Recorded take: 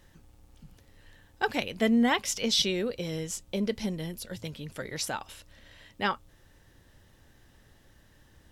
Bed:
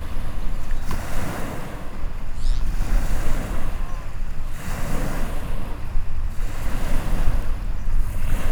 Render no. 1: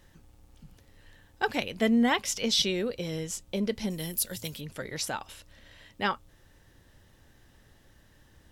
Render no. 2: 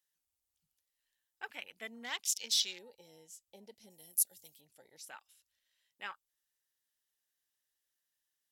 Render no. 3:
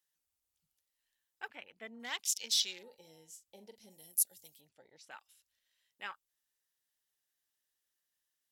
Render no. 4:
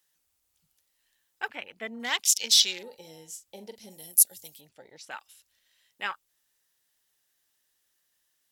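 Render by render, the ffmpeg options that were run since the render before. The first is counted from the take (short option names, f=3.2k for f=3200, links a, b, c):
-filter_complex "[0:a]asettb=1/sr,asplit=3[a][b][c];[a]atrim=end=3.904[d];[b]atrim=start=3.9:end=4.61,asetpts=PTS-STARTPTS,afade=t=in:d=0.004:c=qsin,afade=t=out:st=0.706:d=0.004:c=qsin,aemphasis=mode=production:type=75fm[e];[c]atrim=start=4.606[f];[d][e]acrossfade=d=0.004:c1=hsin:c2=qsin[g];[g][f]acrossfade=d=0.004:c1=qsin:c2=hsin"
-af "afwtdn=0.0141,aderivative"
-filter_complex "[0:a]asettb=1/sr,asplit=3[a][b][c];[a]atrim=end=1.484[d];[b]atrim=start=1.48:end=2,asetpts=PTS-STARTPTS,afade=t=in:d=0.004:c=qsin,afade=t=out:st=0.516:d=0.004:c=qsin,lowpass=f=1.6k:p=1[e];[c]atrim=start=1.996[f];[d][e]acrossfade=d=0.004:c1=hsin:c2=qsin[g];[g][f]acrossfade=d=0.004:c1=qsin:c2=hsin,asettb=1/sr,asplit=3[h][i][j];[h]atrim=end=2.734[k];[i]atrim=start=2.73:end=4.07,asetpts=PTS-STARTPTS,afade=t=in:d=0.004:c=qsin,afade=t=out:st=1.336:d=0.004:c=qsin,asplit=2[l][m];[m]adelay=43,volume=-11dB[n];[l][n]amix=inputs=2:normalize=0,atrim=end_sample=59094[o];[j]atrim=start=4.066[p];[k][o]acrossfade=d=0.004:c1=hsin:c2=qsin[q];[q][p]acrossfade=d=0.004:c1=qsin:c2=hsin,asettb=1/sr,asplit=3[r][s][t];[r]atrim=end=4.694[u];[s]atrim=start=4.69:end=5.11,asetpts=PTS-STARTPTS,afade=t=in:d=0.004:c=qsin,afade=t=out:st=0.416:d=0.004:c=qsin,adynamicsmooth=sensitivity=6:basefreq=4.6k[v];[t]atrim=start=5.106[w];[u][v]acrossfade=d=0.004:c1=hsin:c2=qsin[x];[x][w]acrossfade=d=0.004:c1=qsin:c2=hsin"
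-af "volume=11dB"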